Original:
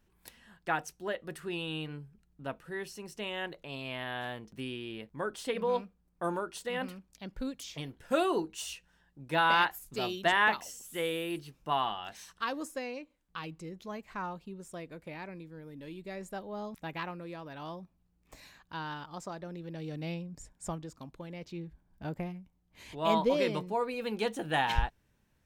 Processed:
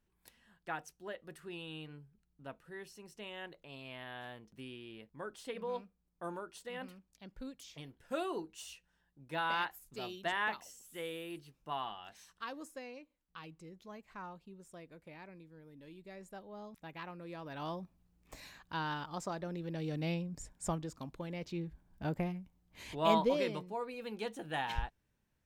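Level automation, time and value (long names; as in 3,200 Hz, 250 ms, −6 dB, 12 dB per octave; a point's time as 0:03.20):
0:16.96 −9 dB
0:17.63 +1.5 dB
0:22.92 +1.5 dB
0:23.67 −8 dB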